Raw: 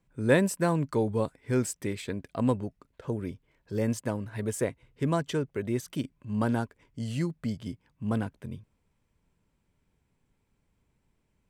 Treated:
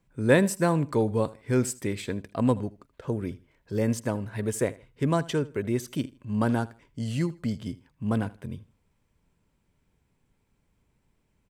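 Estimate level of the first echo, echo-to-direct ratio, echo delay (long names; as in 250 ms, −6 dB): −20.0 dB, −19.5 dB, 79 ms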